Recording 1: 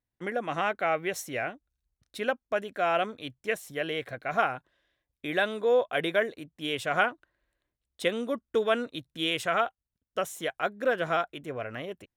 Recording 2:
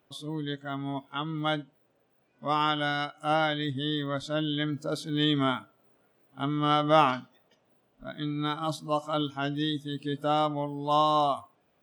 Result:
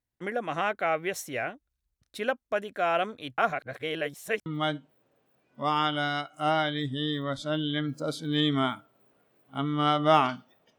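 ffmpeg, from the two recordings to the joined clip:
-filter_complex "[0:a]apad=whole_dur=10.78,atrim=end=10.78,asplit=2[a][b];[a]atrim=end=3.382[c];[b]atrim=start=3.378:end=4.462,asetpts=PTS-STARTPTS,areverse[d];[1:a]atrim=start=1.298:end=7.62[e];[c][d]acrossfade=d=0.004:c1=hsin:c2=hsin[f];[f][e]acrossfade=d=0.004:c1=hsin:c2=hsin"

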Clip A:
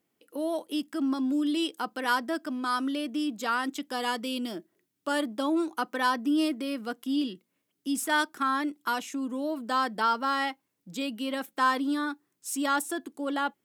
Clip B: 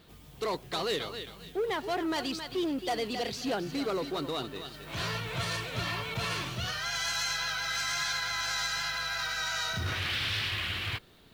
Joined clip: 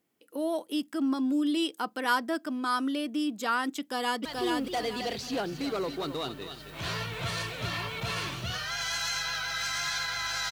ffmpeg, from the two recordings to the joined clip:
-filter_complex "[0:a]apad=whole_dur=10.51,atrim=end=10.51,atrim=end=4.252[a];[1:a]atrim=start=2.388:end=8.65[b];[a][b]acrossfade=d=0.004:c1=hsin:c2=hsin,asplit=2[c][d];[d]afade=t=in:st=3.79:d=0.01,afade=t=out:st=4.25:d=0.01,aecho=0:1:430|860|1290|1720|2150:0.707946|0.247781|0.0867234|0.0303532|0.0106236[e];[c][e]amix=inputs=2:normalize=0"

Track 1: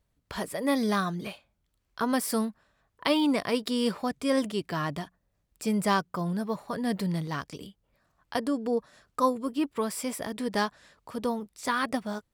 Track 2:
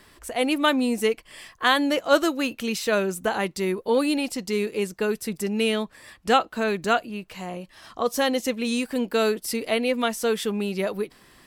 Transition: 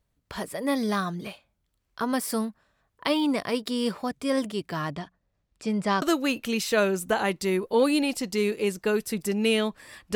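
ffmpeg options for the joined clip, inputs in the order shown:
-filter_complex "[0:a]asettb=1/sr,asplit=3[a][b][c];[a]atrim=end=4.914[d];[b]atrim=start=4.91:end=6.02,asetpts=PTS-STARTPTS,afade=t=in:d=0.004:c=qsin,afade=t=out:st=1.106:d=0.004:c=qsin,lowpass=5.7k[e];[c]atrim=start=6.016[f];[d][e]acrossfade=d=0.004:c1=hsin:c2=qsin[g];[g][f]acrossfade=d=0.004:c1=qsin:c2=hsin,apad=whole_dur=10.15,atrim=end=10.15,atrim=end=6.022[h];[1:a]atrim=start=2.168:end=6.3[i];[h][i]acrossfade=d=0.004:c1=hsin:c2=hsin"

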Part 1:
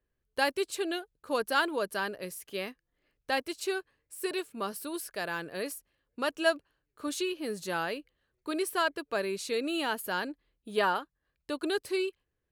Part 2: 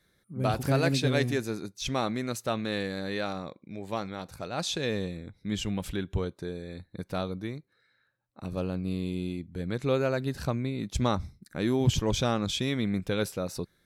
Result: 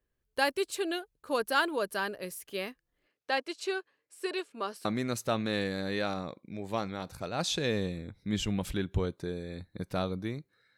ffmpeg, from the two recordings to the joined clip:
-filter_complex "[0:a]asettb=1/sr,asplit=3[a][b][c];[a]atrim=end=3.074[d];[b]atrim=start=3.07:end=4.85,asetpts=PTS-STARTPTS,afade=t=in:d=0.004:c=qsin,afade=t=out:st=1.776:d=0.004:c=qsin,highpass=280,lowpass=6.6k[e];[c]atrim=start=4.846[f];[d][e]acrossfade=d=0.004:c1=hsin:c2=qsin[g];[g][f]acrossfade=d=0.004:c1=qsin:c2=hsin,apad=whole_dur=10.77,atrim=end=10.77,atrim=end=4.852[h];[1:a]atrim=start=2.038:end=7.96[i];[h][i]acrossfade=d=0.004:c1=hsin:c2=hsin"

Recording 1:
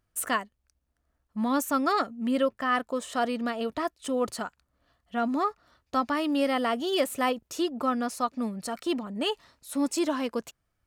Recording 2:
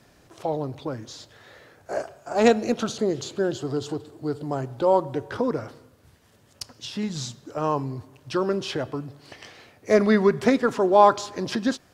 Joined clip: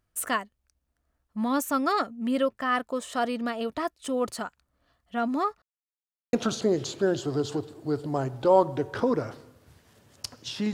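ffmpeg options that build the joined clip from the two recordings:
-filter_complex "[0:a]apad=whole_dur=10.73,atrim=end=10.73,asplit=2[a][b];[a]atrim=end=5.62,asetpts=PTS-STARTPTS,afade=t=out:st=5.616:d=0.004:c=hsin[c];[b]atrim=start=5.62:end=6.33,asetpts=PTS-STARTPTS,volume=0[d];[1:a]atrim=start=2.7:end=7.1,asetpts=PTS-STARTPTS,afade=t=in:d=0.004:c=hsin[e];[c][d][e]concat=n=3:v=0:a=1"

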